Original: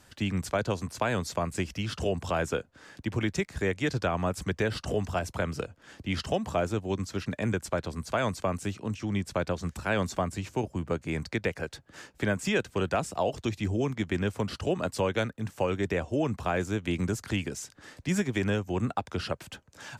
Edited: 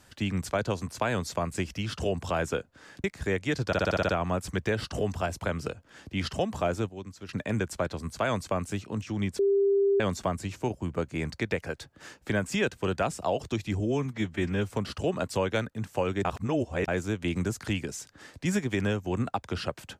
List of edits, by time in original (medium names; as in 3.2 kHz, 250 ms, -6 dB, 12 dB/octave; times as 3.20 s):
3.04–3.39 s: delete
4.02 s: stutter 0.06 s, 8 plays
6.82–7.22 s: gain -10 dB
9.32–9.93 s: bleep 397 Hz -20 dBFS
13.73–14.33 s: stretch 1.5×
15.88–16.51 s: reverse